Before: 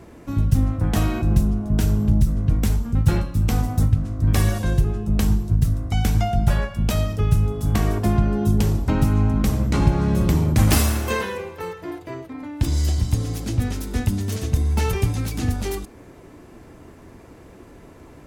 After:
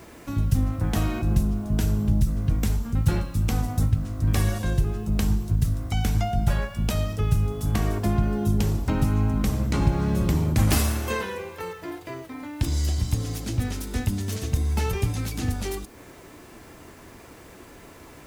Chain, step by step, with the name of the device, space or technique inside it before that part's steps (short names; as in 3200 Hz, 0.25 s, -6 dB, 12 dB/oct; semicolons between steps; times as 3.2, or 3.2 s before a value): noise-reduction cassette on a plain deck (mismatched tape noise reduction encoder only; wow and flutter 16 cents; white noise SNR 36 dB); gain -4 dB